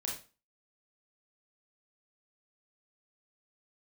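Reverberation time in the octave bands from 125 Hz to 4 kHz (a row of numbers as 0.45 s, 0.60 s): 0.30 s, 0.35 s, 0.35 s, 0.35 s, 0.30 s, 0.30 s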